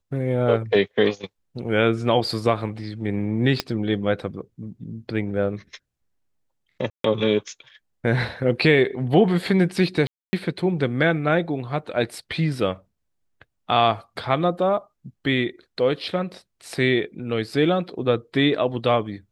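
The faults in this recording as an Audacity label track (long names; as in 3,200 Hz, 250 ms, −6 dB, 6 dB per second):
3.600000	3.600000	click −8 dBFS
6.900000	7.040000	drop-out 143 ms
10.070000	10.330000	drop-out 260 ms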